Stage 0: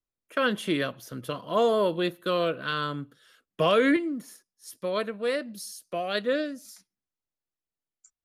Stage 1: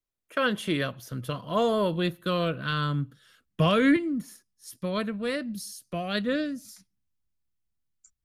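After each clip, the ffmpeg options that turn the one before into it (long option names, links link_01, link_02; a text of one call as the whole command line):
ffmpeg -i in.wav -af "asubboost=boost=7.5:cutoff=170" out.wav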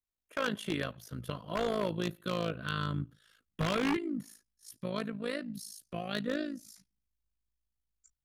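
ffmpeg -i in.wav -af "tremolo=f=54:d=0.788,aeval=exprs='0.0944*(abs(mod(val(0)/0.0944+3,4)-2)-1)':channel_layout=same,volume=-3dB" out.wav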